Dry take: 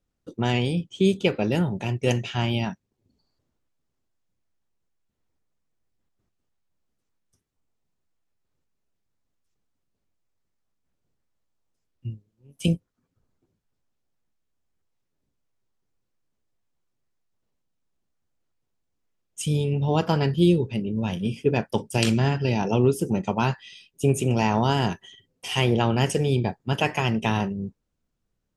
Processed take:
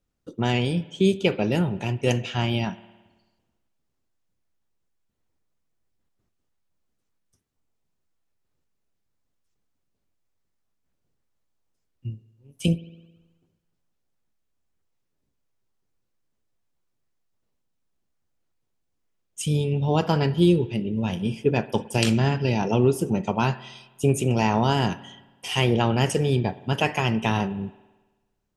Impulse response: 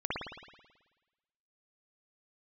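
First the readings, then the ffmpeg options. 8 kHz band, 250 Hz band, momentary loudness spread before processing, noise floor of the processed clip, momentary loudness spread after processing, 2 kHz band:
+0.5 dB, +0.5 dB, 11 LU, -76 dBFS, 12 LU, +0.5 dB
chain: -filter_complex "[0:a]asplit=2[s0][s1];[1:a]atrim=start_sample=2205,lowshelf=f=140:g=-10[s2];[s1][s2]afir=irnorm=-1:irlink=0,volume=0.0794[s3];[s0][s3]amix=inputs=2:normalize=0"

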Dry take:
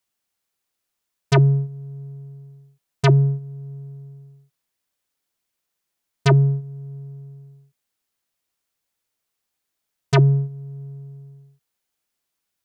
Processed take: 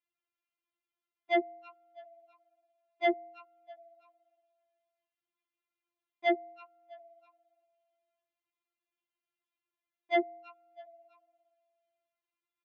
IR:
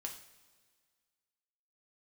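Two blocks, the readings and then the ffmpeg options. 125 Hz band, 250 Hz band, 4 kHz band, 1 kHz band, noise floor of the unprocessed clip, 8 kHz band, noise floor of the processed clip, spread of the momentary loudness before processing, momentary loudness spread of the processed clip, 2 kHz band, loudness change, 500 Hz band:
under -40 dB, -13.0 dB, -11.5 dB, -4.5 dB, -80 dBFS, no reading, under -85 dBFS, 21 LU, 12 LU, -5.5 dB, -13.0 dB, -7.0 dB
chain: -filter_complex "[0:a]highpass=f=310:w=0.5412,highpass=f=310:w=1.3066,equalizer=f=320:t=q:w=4:g=-5,equalizer=f=460:t=q:w=4:g=9,equalizer=f=690:t=q:w=4:g=-6,equalizer=f=1200:t=q:w=4:g=-6,equalizer=f=1700:t=q:w=4:g=-7,lowpass=f=2800:w=0.5412,lowpass=f=2800:w=1.3066,asplit=4[s0][s1][s2][s3];[s1]adelay=327,afreqshift=130,volume=0.0841[s4];[s2]adelay=654,afreqshift=260,volume=0.0372[s5];[s3]adelay=981,afreqshift=390,volume=0.0162[s6];[s0][s4][s5][s6]amix=inputs=4:normalize=0,afftfilt=real='re*4*eq(mod(b,16),0)':imag='im*4*eq(mod(b,16),0)':win_size=2048:overlap=0.75,volume=0.841"

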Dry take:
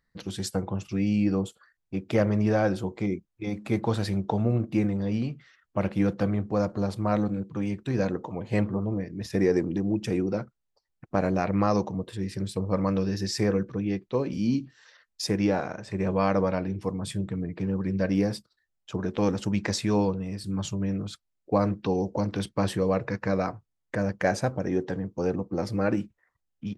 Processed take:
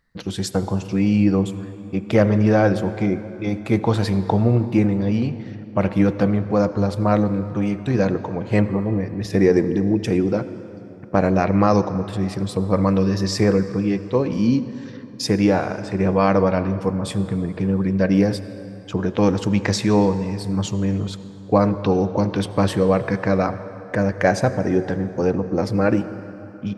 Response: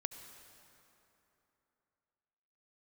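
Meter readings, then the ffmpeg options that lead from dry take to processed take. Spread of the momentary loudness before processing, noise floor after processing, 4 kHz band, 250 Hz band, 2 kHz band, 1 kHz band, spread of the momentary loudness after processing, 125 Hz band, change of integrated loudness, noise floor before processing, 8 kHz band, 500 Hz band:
9 LU, -37 dBFS, +6.0 dB, +7.5 dB, +7.5 dB, +7.5 dB, 9 LU, +8.0 dB, +7.5 dB, -79 dBFS, +5.0 dB, +7.5 dB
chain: -filter_complex "[0:a]asplit=2[s0][s1];[1:a]atrim=start_sample=2205,asetrate=42336,aresample=44100,highshelf=f=6300:g=-8.5[s2];[s1][s2]afir=irnorm=-1:irlink=0,volume=1.68[s3];[s0][s3]amix=inputs=2:normalize=0"

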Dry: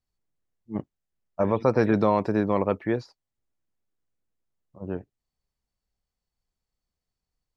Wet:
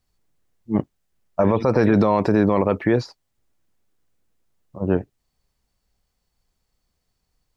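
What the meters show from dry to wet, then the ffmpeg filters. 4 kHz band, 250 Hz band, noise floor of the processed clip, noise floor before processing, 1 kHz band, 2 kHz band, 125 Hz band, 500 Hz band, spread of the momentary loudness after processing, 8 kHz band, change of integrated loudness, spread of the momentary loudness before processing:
+7.0 dB, +6.5 dB, -75 dBFS, under -85 dBFS, +4.0 dB, +5.5 dB, +7.0 dB, +4.5 dB, 9 LU, no reading, +5.0 dB, 14 LU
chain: -af "alimiter=level_in=7.94:limit=0.891:release=50:level=0:latency=1,volume=0.501"

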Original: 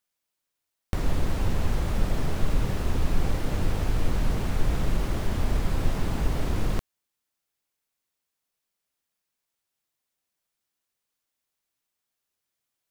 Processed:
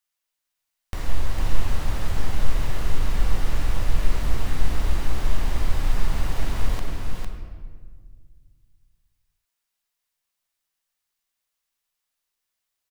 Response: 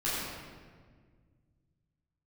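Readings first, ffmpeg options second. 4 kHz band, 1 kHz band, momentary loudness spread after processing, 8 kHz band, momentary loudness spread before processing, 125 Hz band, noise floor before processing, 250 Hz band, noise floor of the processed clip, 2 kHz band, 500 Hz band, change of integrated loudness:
+2.5 dB, +1.0 dB, 8 LU, +2.0 dB, 2 LU, -0.5 dB, -84 dBFS, -4.5 dB, -82 dBFS, +2.0 dB, -3.0 dB, 0.0 dB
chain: -filter_complex "[0:a]equalizer=f=190:w=0.36:g=-9.5,aecho=1:1:454:0.631,asplit=2[s0][s1];[1:a]atrim=start_sample=2205[s2];[s1][s2]afir=irnorm=-1:irlink=0,volume=0.299[s3];[s0][s3]amix=inputs=2:normalize=0,volume=0.841"

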